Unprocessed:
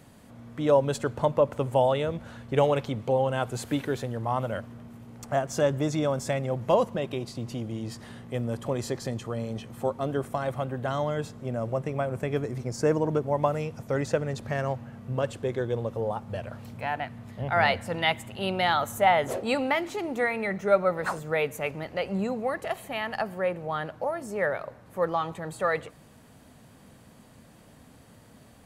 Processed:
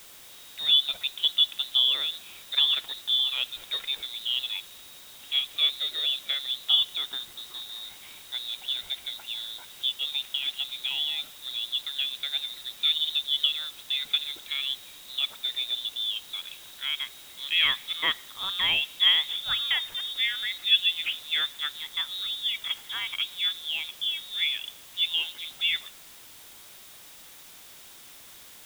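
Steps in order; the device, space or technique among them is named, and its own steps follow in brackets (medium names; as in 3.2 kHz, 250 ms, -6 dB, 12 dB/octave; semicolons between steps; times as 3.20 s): scrambled radio voice (band-pass 320–2900 Hz; frequency inversion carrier 4 kHz; white noise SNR 19 dB)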